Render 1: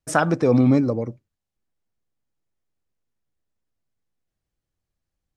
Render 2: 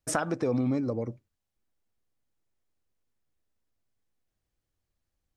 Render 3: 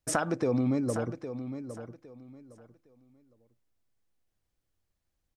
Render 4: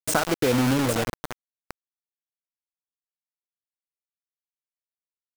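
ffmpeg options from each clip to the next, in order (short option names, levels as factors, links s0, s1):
-af "equalizer=f=160:w=4.5:g=-5.5,acompressor=threshold=0.0398:ratio=3"
-af "aecho=1:1:810|1620|2430:0.299|0.0716|0.0172"
-af "acrusher=bits=4:mix=0:aa=0.000001,volume=1.78"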